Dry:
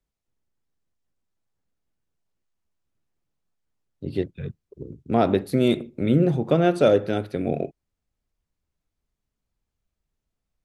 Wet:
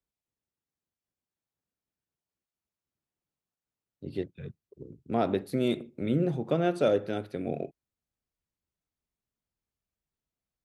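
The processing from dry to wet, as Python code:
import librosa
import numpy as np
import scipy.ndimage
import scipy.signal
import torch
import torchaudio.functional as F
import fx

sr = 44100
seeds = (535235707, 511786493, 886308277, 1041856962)

y = fx.highpass(x, sr, hz=97.0, slope=6)
y = F.gain(torch.from_numpy(y), -7.0).numpy()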